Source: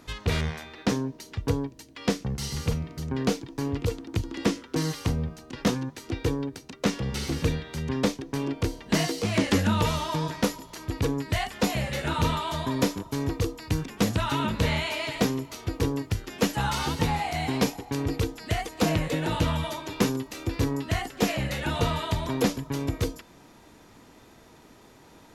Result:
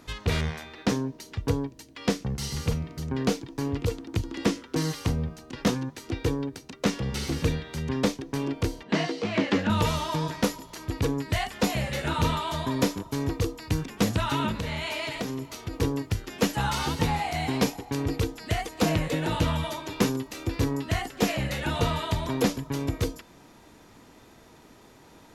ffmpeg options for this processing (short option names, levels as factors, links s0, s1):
-filter_complex "[0:a]asettb=1/sr,asplit=3[s0][s1][s2];[s0]atrim=end=8.834[s3];[s1]atrim=start=8.83:end=9.7,asetpts=PTS-STARTPTS,afade=t=in:d=0.004:c=qsin,afade=t=out:st=0.866:d=0.004:c=qsin,highpass=170,lowpass=3600[s4];[s2]atrim=start=9.696[s5];[s3][s4]acrossfade=d=0.004:c1=hsin:c2=qsin[s6];[s6][s5]acrossfade=d=0.004:c1=qsin:c2=hsin,asettb=1/sr,asplit=3[s7][s8][s9];[s7]atrim=end=14.524[s10];[s8]atrim=start=14.52:end=15.76,asetpts=PTS-STARTPTS,afade=t=in:d=0.004:c=qsin,afade=t=out:st=1.236:d=0.004:c=qsin,acompressor=threshold=0.0447:ratio=6:attack=3.2:release=140:knee=1:detection=peak[s11];[s9]atrim=start=15.756[s12];[s10][s11]acrossfade=d=0.004:c1=hsin:c2=qsin[s13];[s13][s12]acrossfade=d=0.004:c1=qsin:c2=hsin"